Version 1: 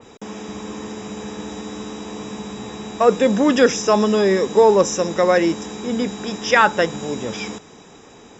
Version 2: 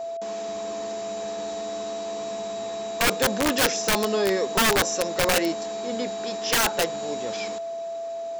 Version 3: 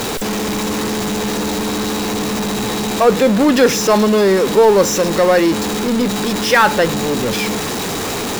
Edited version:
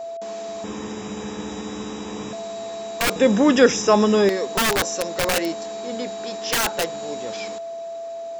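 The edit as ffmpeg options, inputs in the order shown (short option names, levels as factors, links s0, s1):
-filter_complex "[0:a]asplit=2[s0][s1];[1:a]asplit=3[s2][s3][s4];[s2]atrim=end=0.642[s5];[s0]atrim=start=0.638:end=2.332[s6];[s3]atrim=start=2.328:end=3.162[s7];[s1]atrim=start=3.158:end=4.292[s8];[s4]atrim=start=4.288[s9];[s5][s6]acrossfade=d=0.004:c1=hsin:c2=hsin[s10];[s10][s7]acrossfade=d=0.004:c1=hsin:c2=hsin[s11];[s11][s8]acrossfade=d=0.004:c1=hsin:c2=hsin[s12];[s12][s9]acrossfade=d=0.004:c1=hsin:c2=hsin"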